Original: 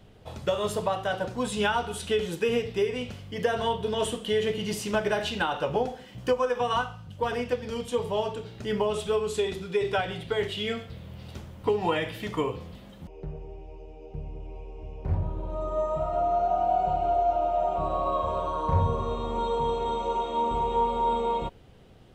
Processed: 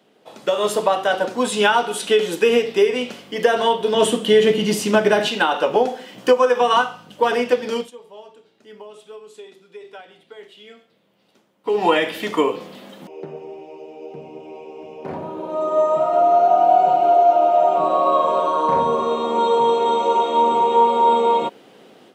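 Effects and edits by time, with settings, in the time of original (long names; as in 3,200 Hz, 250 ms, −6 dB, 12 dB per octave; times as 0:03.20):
0:03.94–0:05.28: parametric band 140 Hz +10.5 dB 1.7 octaves
0:07.76–0:11.79: duck −23.5 dB, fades 0.15 s
whole clip: high-pass filter 230 Hz 24 dB per octave; automatic gain control gain up to 11 dB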